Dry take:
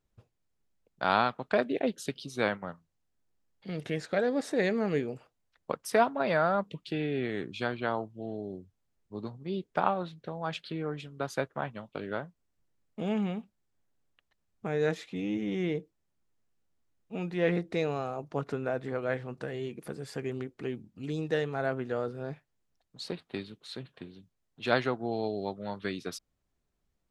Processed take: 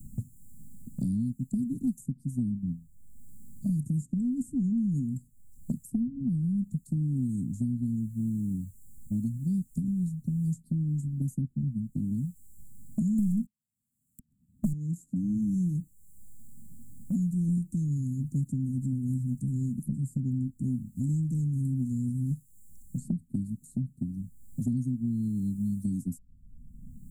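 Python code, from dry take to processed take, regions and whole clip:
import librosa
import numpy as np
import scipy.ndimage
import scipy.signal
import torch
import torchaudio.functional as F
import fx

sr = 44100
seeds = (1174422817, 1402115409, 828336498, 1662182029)

y = fx.chain(x, sr, fx.highpass(hz=110.0, slope=12),
    fx.leveller(passes=5), at=(13.18, 14.73))
y = scipy.signal.sosfilt(scipy.signal.cheby1(5, 1.0, [250.0, 7400.0], 'bandstop', fs=sr, output='sos'), y)
y = fx.low_shelf(y, sr, hz=63.0, db=10.5)
y = fx.band_squash(y, sr, depth_pct=100)
y = y * 10.0 ** (8.5 / 20.0)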